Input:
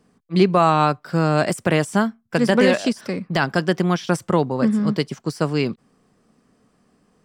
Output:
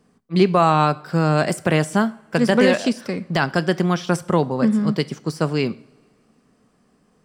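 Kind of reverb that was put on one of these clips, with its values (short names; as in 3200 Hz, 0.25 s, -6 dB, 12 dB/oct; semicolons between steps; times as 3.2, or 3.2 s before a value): two-slope reverb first 0.52 s, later 2.2 s, from -19 dB, DRR 16 dB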